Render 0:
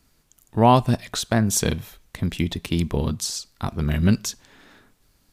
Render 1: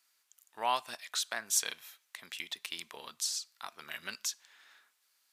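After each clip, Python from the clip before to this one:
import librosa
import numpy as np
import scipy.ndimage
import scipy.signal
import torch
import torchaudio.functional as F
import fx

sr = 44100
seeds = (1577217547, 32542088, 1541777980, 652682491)

y = scipy.signal.sosfilt(scipy.signal.butter(2, 1300.0, 'highpass', fs=sr, output='sos'), x)
y = y * 10.0 ** (-6.0 / 20.0)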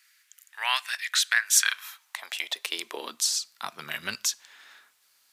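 y = fx.filter_sweep_highpass(x, sr, from_hz=1800.0, to_hz=100.0, start_s=1.46, end_s=4.05, q=2.9)
y = y * 10.0 ** (8.5 / 20.0)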